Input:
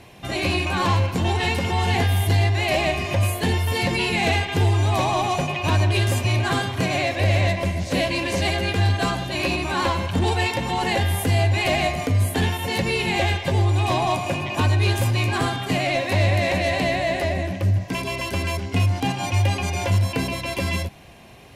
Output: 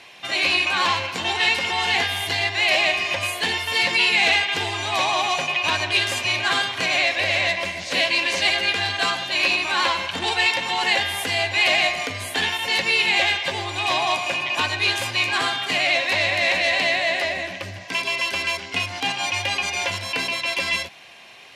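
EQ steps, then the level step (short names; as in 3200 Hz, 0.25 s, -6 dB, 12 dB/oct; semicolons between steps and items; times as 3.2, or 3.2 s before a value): band-pass 3600 Hz, Q 0.66; high shelf 5100 Hz -5 dB; +9.0 dB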